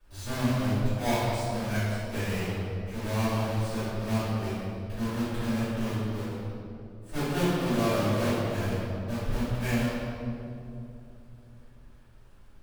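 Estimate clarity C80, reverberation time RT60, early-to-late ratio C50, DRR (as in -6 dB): -1.5 dB, 2.8 s, -4.0 dB, -17.0 dB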